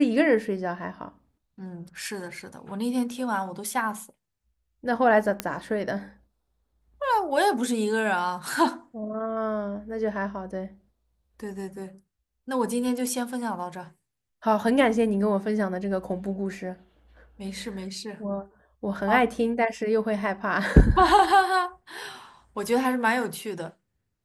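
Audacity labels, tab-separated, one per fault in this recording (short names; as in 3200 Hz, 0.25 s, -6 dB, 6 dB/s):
5.400000	5.400000	pop -10 dBFS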